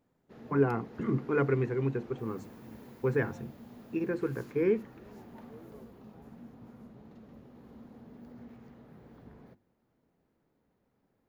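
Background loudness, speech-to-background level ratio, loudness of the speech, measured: -50.5 LUFS, 19.0 dB, -31.5 LUFS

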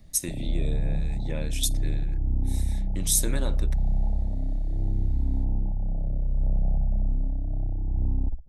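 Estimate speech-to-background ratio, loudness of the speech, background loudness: -0.5 dB, -30.5 LUFS, -30.0 LUFS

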